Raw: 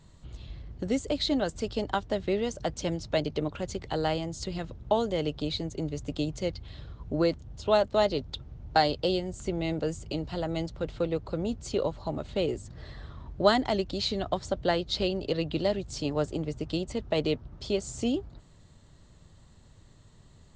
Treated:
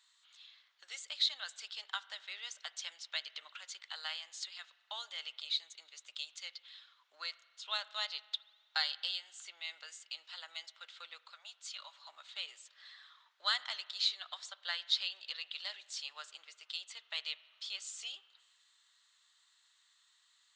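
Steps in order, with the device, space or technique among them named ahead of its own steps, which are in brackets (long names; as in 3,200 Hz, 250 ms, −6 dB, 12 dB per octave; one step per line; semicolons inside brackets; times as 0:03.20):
0:11.21–0:12.09: elliptic high-pass filter 590 Hz
headphones lying on a table (high-pass filter 1,300 Hz 24 dB per octave; parametric band 3,600 Hz +6.5 dB 0.45 octaves)
spring reverb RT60 1.5 s, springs 31 ms, chirp 60 ms, DRR 17 dB
level −4.5 dB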